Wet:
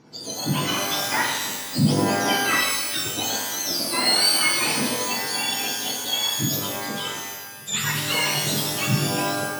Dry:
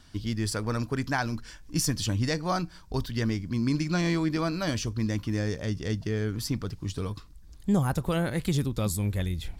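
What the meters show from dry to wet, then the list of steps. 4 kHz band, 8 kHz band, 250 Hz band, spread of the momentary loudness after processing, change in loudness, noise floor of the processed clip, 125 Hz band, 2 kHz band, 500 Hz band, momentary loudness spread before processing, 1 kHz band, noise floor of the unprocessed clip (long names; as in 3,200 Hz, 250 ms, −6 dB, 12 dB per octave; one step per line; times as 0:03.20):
+16.0 dB, +13.5 dB, +0.5 dB, 9 LU, +7.5 dB, −36 dBFS, −1.5 dB, +11.5 dB, +3.0 dB, 7 LU, +9.5 dB, −49 dBFS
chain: frequency axis turned over on the octave scale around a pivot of 1,200 Hz
low-pass filter 5,300 Hz 12 dB per octave
parametric band 3,000 Hz +10.5 dB 2.8 octaves
reverb with rising layers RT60 1.1 s, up +12 semitones, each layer −2 dB, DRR −0.5 dB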